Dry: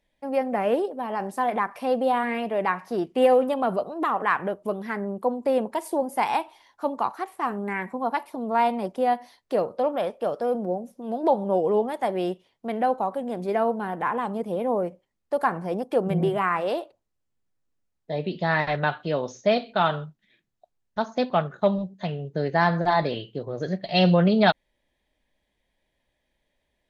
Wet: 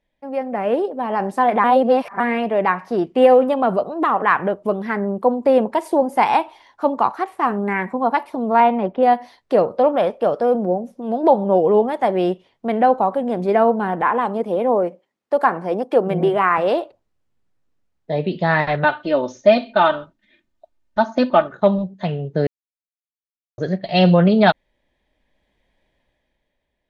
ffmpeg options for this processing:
ffmpeg -i in.wav -filter_complex "[0:a]asettb=1/sr,asplit=3[link_01][link_02][link_03];[link_01]atrim=end=8.604[link_04];[link_02]atrim=start=8.6:end=9.03,asetpts=PTS-STARTPTS,afade=type=in:duration=0.004:curve=qsin,afade=type=out:start_time=0.426:duration=0.004:curve=qsin,lowpass=frequency=3300:width=0.5412,lowpass=frequency=3300:width=1.3066[link_05];[link_03]atrim=start=9.026[link_06];[link_04][link_05]acrossfade=duration=0.004:curve1=hsin:curve2=qsin[link_07];[link_07][link_06]acrossfade=duration=0.004:curve1=qsin:curve2=hsin,asettb=1/sr,asplit=3[link_08][link_09][link_10];[link_08]atrim=end=14.024[link_11];[link_09]atrim=start=14.02:end=16.58,asetpts=PTS-STARTPTS,afade=type=in:duration=0.004:curve=qsin,afade=type=out:start_time=2.556:duration=0.004:curve=qsin,highpass=240[link_12];[link_10]atrim=start=16.576[link_13];[link_11][link_12]acrossfade=duration=0.004:curve1=hsin:curve2=qsin[link_14];[link_14][link_13]acrossfade=duration=0.004:curve1=qsin:curve2=hsin,asettb=1/sr,asplit=3[link_15][link_16][link_17];[link_15]atrim=end=18.844[link_18];[link_16]atrim=start=18.84:end=21.52,asetpts=PTS-STARTPTS,afade=type=in:duration=0.004:curve=qsin,afade=type=out:start_time=2.676:duration=0.004:curve=qsin,aecho=1:1:3.3:0.83,atrim=end_sample=118188[link_19];[link_17]atrim=start=21.516[link_20];[link_18][link_19]acrossfade=duration=0.004:curve1=hsin:curve2=qsin[link_21];[link_21][link_20]acrossfade=duration=0.004:curve1=qsin:curve2=hsin,asplit=5[link_22][link_23][link_24][link_25][link_26];[link_22]atrim=end=1.642[link_27];[link_23]atrim=start=1.638:end=2.202,asetpts=PTS-STARTPTS,areverse[link_28];[link_24]atrim=start=2.198:end=22.47,asetpts=PTS-STARTPTS,afade=type=out:start_time=20.268:duration=0.004:curve=hsin[link_29];[link_25]atrim=start=22.47:end=23.58,asetpts=PTS-STARTPTS,volume=0[link_30];[link_26]atrim=start=23.58,asetpts=PTS-STARTPTS,afade=type=in:duration=0.004:curve=hsin[link_31];[link_27][link_28]acrossfade=duration=0.004:curve1=hsin:curve2=hsin[link_32];[link_29][link_30][link_31]concat=n=3:v=0:a=1[link_33];[link_32][link_33]acrossfade=duration=0.004:curve1=hsin:curve2=hsin,aemphasis=mode=reproduction:type=50kf,dynaudnorm=framelen=100:gausssize=17:maxgain=9.5dB" out.wav

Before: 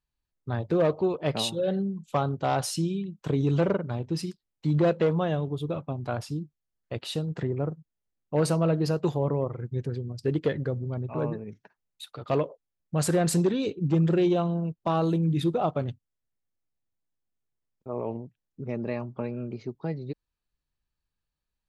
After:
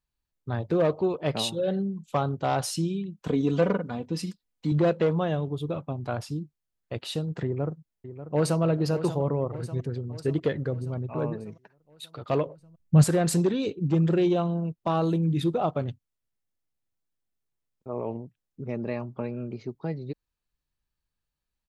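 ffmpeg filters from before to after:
ffmpeg -i in.wav -filter_complex "[0:a]asettb=1/sr,asplit=3[link_01][link_02][link_03];[link_01]atrim=end=3.274[link_04];[link_02]atrim=start=3.27:end=4.72,asetpts=PTS-STARTPTS,afade=type=in:duration=0.004:curve=qsin,afade=type=out:start_time=1.446:duration=0.004:curve=qsin,aecho=1:1:4.1:0.65,atrim=end_sample=63945[link_05];[link_03]atrim=start=4.716[link_06];[link_04][link_05]acrossfade=duration=0.004:curve1=hsin:curve2=qsin[link_07];[link_07][link_06]acrossfade=duration=0.004:curve1=qsin:curve2=hsin,asplit=2[link_08][link_09];[link_09]afade=type=in:start_time=7.45:duration=0.01,afade=type=out:start_time=8.62:duration=0.01,aecho=0:1:590|1180|1770|2360|2950|3540|4130:0.266073|0.159644|0.0957861|0.0574717|0.034483|0.0206898|0.0124139[link_10];[link_08][link_10]amix=inputs=2:normalize=0,asettb=1/sr,asplit=3[link_11][link_12][link_13];[link_11]atrim=end=12.464[link_14];[link_12]atrim=start=12.46:end=13.04,asetpts=PTS-STARTPTS,afade=type=in:duration=0.004:curve=qsin,afade=type=out:start_time=0.576:duration=0.004:curve=qsin,bass=frequency=250:gain=13,treble=frequency=4000:gain=0[link_15];[link_13]atrim=start=13.036[link_16];[link_14][link_15]acrossfade=duration=0.004:curve1=hsin:curve2=qsin[link_17];[link_17][link_16]acrossfade=duration=0.004:curve1=qsin:curve2=hsin" out.wav

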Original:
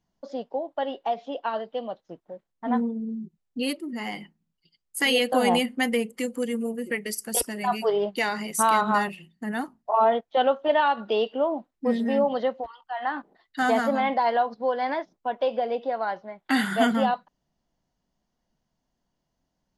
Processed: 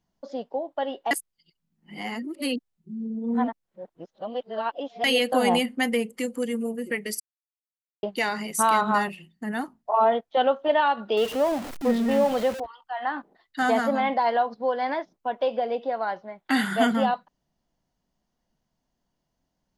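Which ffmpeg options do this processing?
ffmpeg -i in.wav -filter_complex "[0:a]asettb=1/sr,asplit=3[link_01][link_02][link_03];[link_01]atrim=end=11.174[link_04];[link_02]atrim=start=11.17:end=12.6,asetpts=PTS-STARTPTS,afade=type=in:duration=0.004:curve=qsin,afade=type=out:start_time=1.426:duration=0.004:curve=qsin,aeval=exprs='val(0)+0.5*0.0316*sgn(val(0))':channel_layout=same[link_05];[link_03]atrim=start=12.596[link_06];[link_04][link_05]acrossfade=duration=0.004:curve1=hsin:curve2=qsin[link_07];[link_07][link_06]acrossfade=duration=0.004:curve1=qsin:curve2=hsin,asplit=5[link_08][link_09][link_10][link_11][link_12];[link_08]atrim=end=1.112[link_13];[link_09]atrim=start=1.108:end=5.042,asetpts=PTS-STARTPTS,areverse[link_14];[link_10]atrim=start=5.038:end=7.2,asetpts=PTS-STARTPTS,afade=type=out:start_time=2.158:duration=0.004:curve=hsin[link_15];[link_11]atrim=start=7.2:end=8.03,asetpts=PTS-STARTPTS,volume=0[link_16];[link_12]atrim=start=8.03,asetpts=PTS-STARTPTS,afade=type=in:duration=0.004:curve=hsin[link_17];[link_13][link_14]acrossfade=duration=0.004:curve1=hsin:curve2=hsin[link_18];[link_15][link_16][link_17]concat=n=3:v=0:a=1[link_19];[link_18][link_19]acrossfade=duration=0.004:curve1=hsin:curve2=hsin" out.wav

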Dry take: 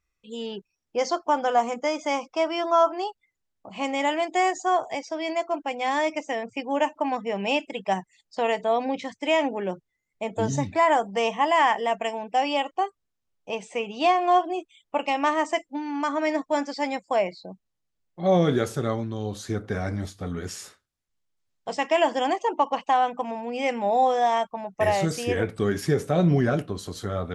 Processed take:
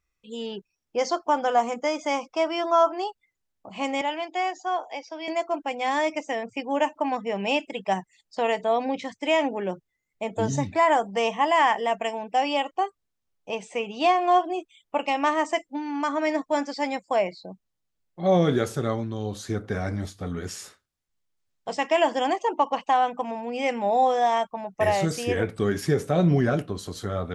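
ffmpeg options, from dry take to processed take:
ffmpeg -i in.wav -filter_complex "[0:a]asettb=1/sr,asplit=3[link_01][link_02][link_03];[link_01]atrim=end=4.014[link_04];[link_02]atrim=start=4.01:end=5.28,asetpts=PTS-STARTPTS,afade=type=in:duration=0.004:curve=qsin,afade=type=out:start_time=1.266:duration=0.004:curve=qsin,highpass=frequency=330:width=0.5412,highpass=frequency=330:width=1.3066,equalizer=frequency=400:width_type=q:width=4:gain=-9,equalizer=frequency=650:width_type=q:width=4:gain=-6,equalizer=frequency=1200:width_type=q:width=4:gain=-6,equalizer=frequency=1900:width_type=q:width=4:gain=-7,equalizer=frequency=4000:width_type=q:width=4:gain=-5,lowpass=frequency=5200:width=0.5412,lowpass=frequency=5200:width=1.3066[link_05];[link_03]atrim=start=5.276[link_06];[link_04][link_05]acrossfade=duration=0.004:curve1=hsin:curve2=qsin[link_07];[link_07][link_06]acrossfade=duration=0.004:curve1=qsin:curve2=hsin" out.wav

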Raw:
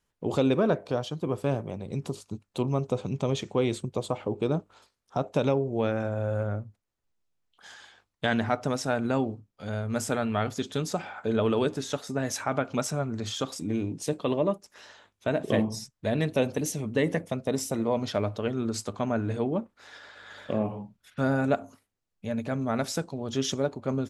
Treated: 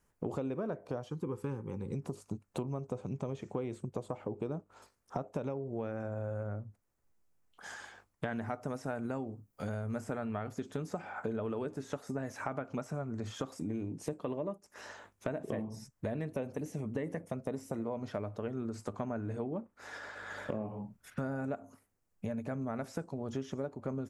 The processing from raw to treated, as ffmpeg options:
ffmpeg -i in.wav -filter_complex "[0:a]asettb=1/sr,asplit=3[link_01][link_02][link_03];[link_01]atrim=end=1.094[link_04];[link_02]atrim=start=1.09:end=1.95,asetpts=PTS-STARTPTS,afade=type=in:duration=0.004:curve=qsin,afade=type=out:start_time=0.856:duration=0.004:curve=qsin,asuperstop=centerf=650:order=8:qfactor=2.5[link_05];[link_03]atrim=start=1.946[link_06];[link_04][link_05]acrossfade=duration=0.004:curve1=hsin:curve2=qsin[link_07];[link_07][link_06]acrossfade=duration=0.004:curve1=qsin:curve2=hsin,asettb=1/sr,asplit=3[link_08][link_09][link_10];[link_08]atrim=end=8.334[link_11];[link_09]atrim=start=8.33:end=9.96,asetpts=PTS-STARTPTS,afade=type=in:duration=0.004:curve=qsin,afade=type=out:start_time=1.626:duration=0.004:curve=qsin,highshelf=frequency=8100:gain=11[link_12];[link_10]atrim=start=9.956[link_13];[link_11][link_12]acrossfade=duration=0.004:curve1=hsin:curve2=qsin[link_14];[link_14][link_13]acrossfade=duration=0.004:curve1=qsin:curve2=hsin,acrossover=split=3400[link_15][link_16];[link_16]acompressor=threshold=-46dB:ratio=4:attack=1:release=60[link_17];[link_15][link_17]amix=inputs=2:normalize=0,equalizer=frequency=3600:width=1.3:gain=-11.5,acompressor=threshold=-40dB:ratio=6,volume=5dB" out.wav

